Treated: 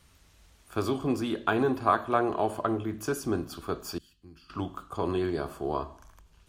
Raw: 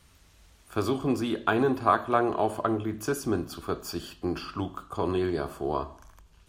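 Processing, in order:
0:03.98–0:04.50: guitar amp tone stack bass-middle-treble 6-0-2
level −1.5 dB

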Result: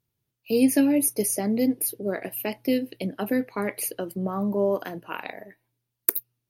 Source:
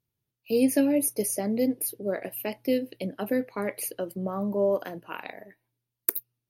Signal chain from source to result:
dynamic equaliser 550 Hz, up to −6 dB, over −41 dBFS, Q 3.8
level +3.5 dB

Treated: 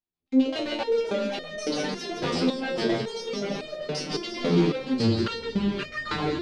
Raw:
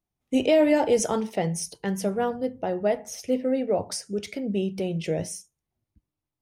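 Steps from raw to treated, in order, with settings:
turntable brake at the end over 2.13 s
camcorder AGC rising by 21 dB per second
low-pass filter 10,000 Hz
low-shelf EQ 460 Hz −4.5 dB
mains-hum notches 50/100/150/200 Hz
in parallel at −7 dB: fuzz pedal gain 44 dB, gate −44 dBFS
on the sum: auto-filter low-pass square 7.6 Hz 390–4,100 Hz
on a send: echo with a time of its own for lows and highs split 1,300 Hz, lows 517 ms, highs 167 ms, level −6 dB
on the sum: delay with pitch and tempo change per echo 551 ms, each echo −2 semitones, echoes 2
step-sequenced resonator 3.6 Hz 86–610 Hz

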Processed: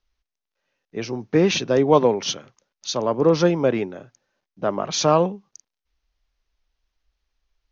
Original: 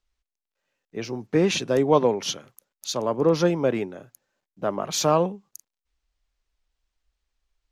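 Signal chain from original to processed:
Butterworth low-pass 6,500 Hz 96 dB per octave
level +3 dB

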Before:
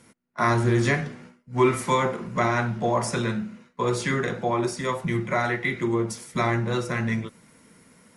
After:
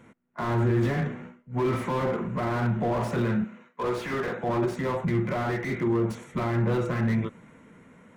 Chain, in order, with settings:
adaptive Wiener filter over 9 samples
0:03.44–0:04.44: high-pass filter 530 Hz 6 dB per octave
brickwall limiter −19.5 dBFS, peak gain reduction 10.5 dB
transient designer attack −4 dB, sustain +1 dB
slew-rate limiting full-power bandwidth 27 Hz
level +3.5 dB

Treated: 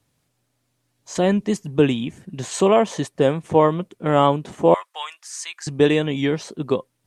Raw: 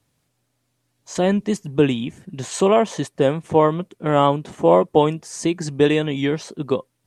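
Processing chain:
0:04.74–0:05.67: high-pass filter 1,200 Hz 24 dB per octave

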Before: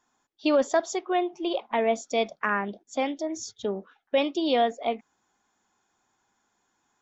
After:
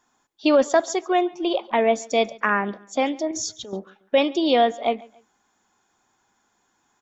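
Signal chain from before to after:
0:03.31–0:03.73: compressor whose output falls as the input rises −37 dBFS, ratio −1
on a send: repeating echo 140 ms, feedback 34%, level −23 dB
on the sum: level +5 dB

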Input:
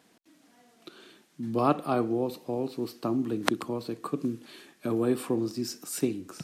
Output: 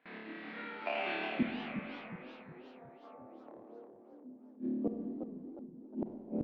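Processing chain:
pitch shifter gated in a rhythm +11.5 semitones, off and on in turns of 530 ms
in parallel at 0 dB: downward compressor 12 to 1, threshold −38 dBFS, peak gain reduction 20 dB
on the sum: Chebyshev band-pass filter 170–4,300 Hz, order 4
on a send: flutter between parallel walls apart 4.7 metres, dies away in 1.2 s
on the sum: noise gate with hold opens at −48 dBFS
low-pass filter sweep 2,200 Hz → 250 Hz, 0:02.40–0:04.35
gate with flip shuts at −25 dBFS, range −36 dB
four-comb reverb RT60 1.7 s, combs from 32 ms, DRR 5.5 dB
feedback echo with a swinging delay time 364 ms, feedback 42%, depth 217 cents, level −8 dB
level +3.5 dB

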